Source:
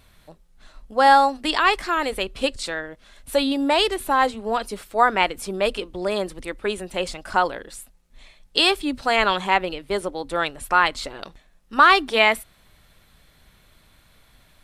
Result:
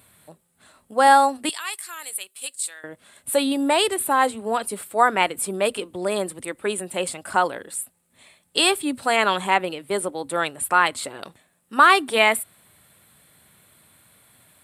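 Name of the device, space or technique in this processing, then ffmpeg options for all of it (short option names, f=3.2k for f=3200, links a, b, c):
budget condenser microphone: -filter_complex "[0:a]asettb=1/sr,asplit=3[a][b][c];[a]atrim=end=1.494[d];[b]atrim=start=1.49:end=2.84,asetpts=PTS-STARTPTS,afade=t=in:d=0.004:c=qsin,afade=t=out:st=1.346:d=0.004:c=qsin,aderivative[e];[c]atrim=start=2.836[f];[d][e]acrossfade=d=0.004:c1=hsin:c2=qsin[g];[g][f]acrossfade=d=0.004:c1=qsin:c2=hsin,highpass=f=94:w=0.5412,highpass=f=94:w=1.3066,highshelf=f=7.1k:t=q:w=3:g=6.5"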